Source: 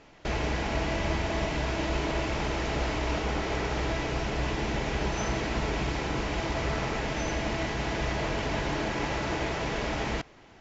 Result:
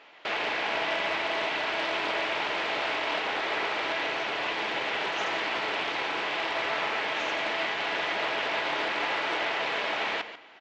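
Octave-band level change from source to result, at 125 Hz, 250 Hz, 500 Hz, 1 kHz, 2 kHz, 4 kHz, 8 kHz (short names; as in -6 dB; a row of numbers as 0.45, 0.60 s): -22.5 dB, -9.0 dB, -0.5 dB, +3.0 dB, +5.5 dB, +5.5 dB, n/a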